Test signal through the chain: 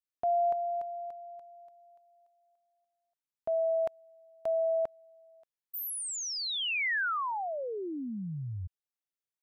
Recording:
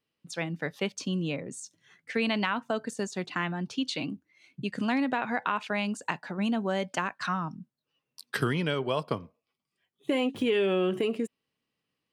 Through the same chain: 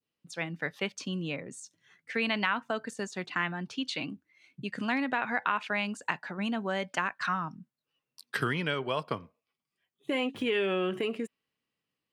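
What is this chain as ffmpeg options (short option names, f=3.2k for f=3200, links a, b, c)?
-af "adynamicequalizer=threshold=0.00631:dfrequency=1800:dqfactor=0.71:tfrequency=1800:tqfactor=0.71:attack=5:release=100:ratio=0.375:range=3.5:mode=boostabove:tftype=bell,volume=-4.5dB"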